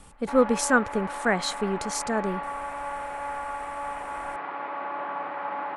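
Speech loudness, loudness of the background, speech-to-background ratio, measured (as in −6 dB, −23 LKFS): −26.0 LKFS, −34.0 LKFS, 8.0 dB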